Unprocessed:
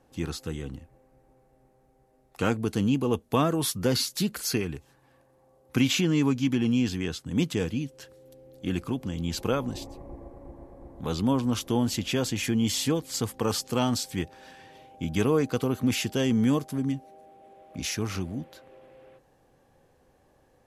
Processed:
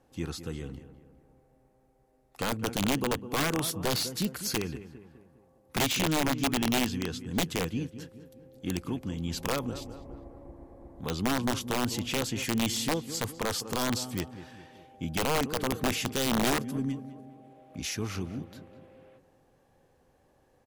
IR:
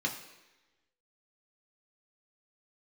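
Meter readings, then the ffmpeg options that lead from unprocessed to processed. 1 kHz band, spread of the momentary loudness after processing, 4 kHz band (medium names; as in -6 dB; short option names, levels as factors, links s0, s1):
+1.0 dB, 18 LU, -0.5 dB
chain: -filter_complex "[0:a]asplit=2[s0][s1];[s1]adelay=203,lowpass=f=2100:p=1,volume=0.224,asplit=2[s2][s3];[s3]adelay=203,lowpass=f=2100:p=1,volume=0.49,asplit=2[s4][s5];[s5]adelay=203,lowpass=f=2100:p=1,volume=0.49,asplit=2[s6][s7];[s7]adelay=203,lowpass=f=2100:p=1,volume=0.49,asplit=2[s8][s9];[s9]adelay=203,lowpass=f=2100:p=1,volume=0.49[s10];[s0][s2][s4][s6][s8][s10]amix=inputs=6:normalize=0,aeval=exprs='0.376*(cos(1*acos(clip(val(0)/0.376,-1,1)))-cos(1*PI/2))+0.0266*(cos(3*acos(clip(val(0)/0.376,-1,1)))-cos(3*PI/2))+0.0211*(cos(5*acos(clip(val(0)/0.376,-1,1)))-cos(5*PI/2))+0.00299*(cos(6*acos(clip(val(0)/0.376,-1,1)))-cos(6*PI/2))+0.00422*(cos(8*acos(clip(val(0)/0.376,-1,1)))-cos(8*PI/2))':c=same,aeval=exprs='(mod(7.5*val(0)+1,2)-1)/7.5':c=same,volume=0.668"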